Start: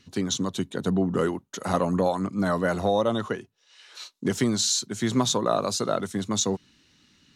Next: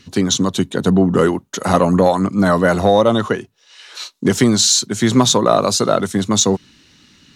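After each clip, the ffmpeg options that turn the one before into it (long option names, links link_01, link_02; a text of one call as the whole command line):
ffmpeg -i in.wav -af "acontrast=77,volume=4dB" out.wav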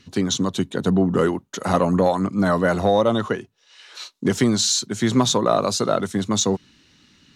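ffmpeg -i in.wav -af "highshelf=frequency=7100:gain=-4.5,volume=-5dB" out.wav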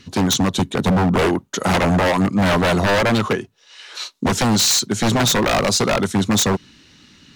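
ffmpeg -i in.wav -af "aeval=exprs='0.133*(abs(mod(val(0)/0.133+3,4)-2)-1)':channel_layout=same,volume=6.5dB" out.wav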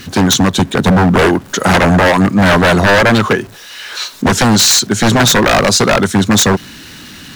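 ffmpeg -i in.wav -af "aeval=exprs='val(0)+0.5*0.0133*sgn(val(0))':channel_layout=same,equalizer=frequency=1600:width_type=o:width=0.38:gain=5,volume=6.5dB" out.wav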